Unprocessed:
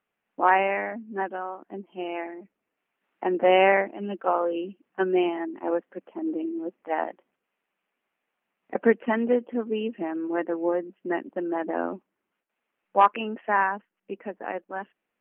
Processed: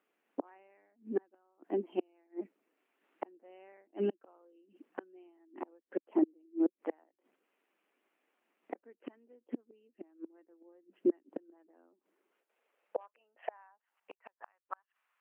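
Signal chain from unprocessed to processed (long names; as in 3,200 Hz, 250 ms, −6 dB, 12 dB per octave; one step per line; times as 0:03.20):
gate with flip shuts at −25 dBFS, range −41 dB
high-pass filter sweep 310 Hz → 1,100 Hz, 0:11.82–0:14.52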